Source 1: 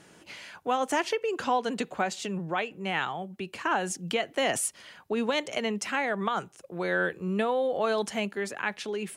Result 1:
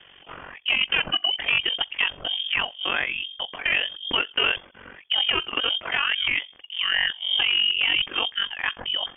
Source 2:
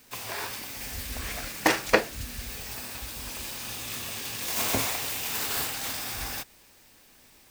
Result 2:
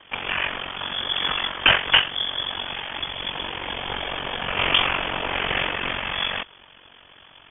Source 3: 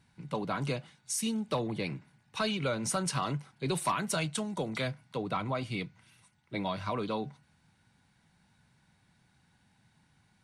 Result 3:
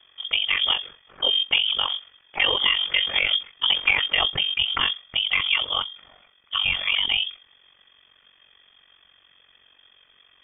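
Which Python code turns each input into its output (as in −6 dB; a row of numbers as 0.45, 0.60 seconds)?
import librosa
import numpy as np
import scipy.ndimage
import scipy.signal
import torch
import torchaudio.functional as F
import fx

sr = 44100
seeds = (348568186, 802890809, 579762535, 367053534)

y = fx.hum_notches(x, sr, base_hz=60, count=3)
y = y * np.sin(2.0 * np.pi * 23.0 * np.arange(len(y)) / sr)
y = np.clip(10.0 ** (23.0 / 20.0) * y, -1.0, 1.0) / 10.0 ** (23.0 / 20.0)
y = fx.freq_invert(y, sr, carrier_hz=3400)
y = y * 10.0 ** (-26 / 20.0) / np.sqrt(np.mean(np.square(y)))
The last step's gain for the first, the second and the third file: +8.0, +14.0, +13.5 decibels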